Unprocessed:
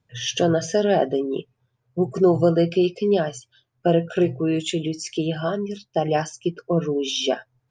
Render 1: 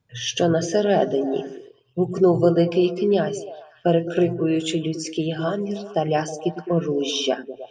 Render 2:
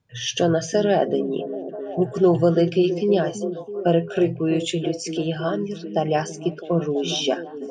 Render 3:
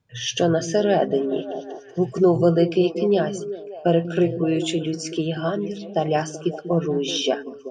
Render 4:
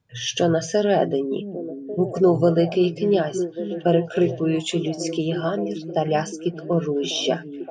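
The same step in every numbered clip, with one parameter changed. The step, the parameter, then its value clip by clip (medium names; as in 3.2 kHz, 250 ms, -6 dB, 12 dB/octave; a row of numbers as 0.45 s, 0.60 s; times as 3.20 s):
repeats whose band climbs or falls, time: 105 ms, 329 ms, 190 ms, 572 ms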